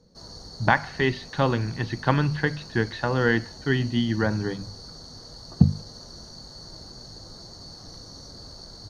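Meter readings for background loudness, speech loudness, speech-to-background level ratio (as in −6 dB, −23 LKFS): −42.0 LKFS, −25.0 LKFS, 17.0 dB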